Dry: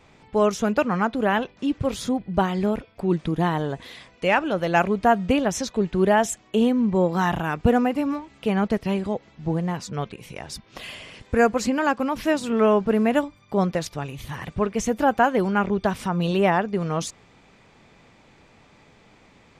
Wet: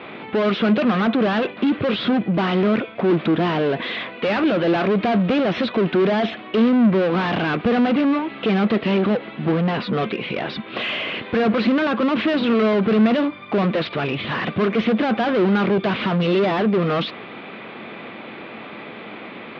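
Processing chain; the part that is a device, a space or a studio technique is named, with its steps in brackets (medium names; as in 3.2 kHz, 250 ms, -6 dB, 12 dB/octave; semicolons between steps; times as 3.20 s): steep low-pass 4 kHz 36 dB/octave; overdrive pedal into a guitar cabinet (overdrive pedal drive 38 dB, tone 2.3 kHz, clips at -5 dBFS; cabinet simulation 110–4100 Hz, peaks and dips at 220 Hz +7 dB, 340 Hz +5 dB, 890 Hz -6 dB, 1.8 kHz -3 dB); trim -7.5 dB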